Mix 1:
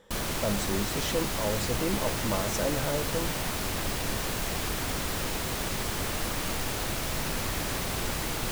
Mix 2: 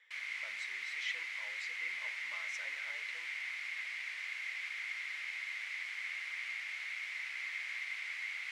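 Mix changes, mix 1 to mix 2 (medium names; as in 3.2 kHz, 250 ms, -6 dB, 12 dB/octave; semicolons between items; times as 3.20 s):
speech +5.0 dB; master: add ladder band-pass 2.2 kHz, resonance 85%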